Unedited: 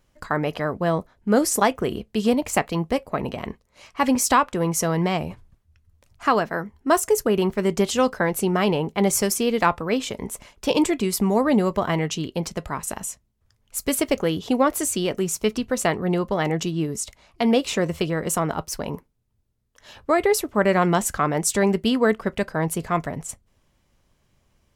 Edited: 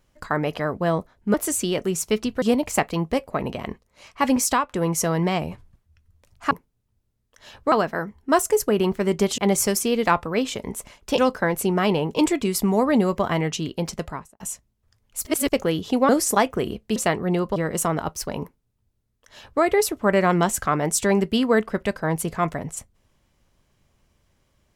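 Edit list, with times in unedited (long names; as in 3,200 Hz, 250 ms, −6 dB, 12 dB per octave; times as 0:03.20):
0:01.34–0:02.21: swap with 0:14.67–0:15.75
0:04.22–0:04.49: fade out, to −9.5 dB
0:07.96–0:08.93: move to 0:10.73
0:12.60–0:12.98: fade out and dull
0:13.83–0:14.10: reverse
0:16.35–0:18.08: remove
0:18.93–0:20.14: duplicate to 0:06.30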